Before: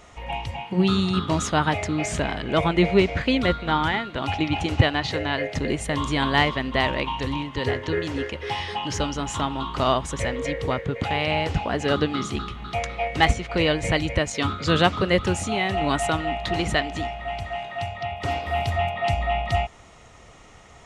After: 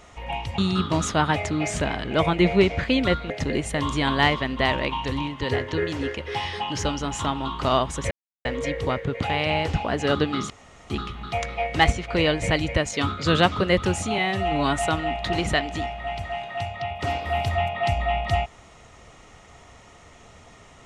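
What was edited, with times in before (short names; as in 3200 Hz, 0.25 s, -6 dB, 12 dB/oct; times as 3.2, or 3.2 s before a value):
0.58–0.96 cut
3.68–5.45 cut
10.26 insert silence 0.34 s
12.31 insert room tone 0.40 s
15.59–15.99 stretch 1.5×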